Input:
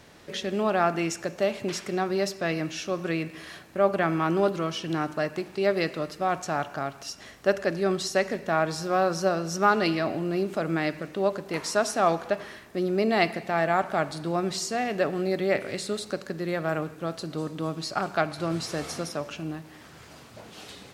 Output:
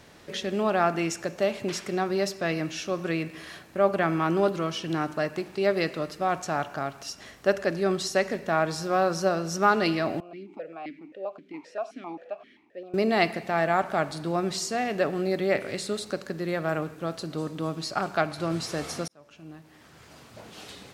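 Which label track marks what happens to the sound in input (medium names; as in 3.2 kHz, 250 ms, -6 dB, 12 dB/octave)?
10.200000	12.940000	stepped vowel filter 7.6 Hz
19.080000	20.460000	fade in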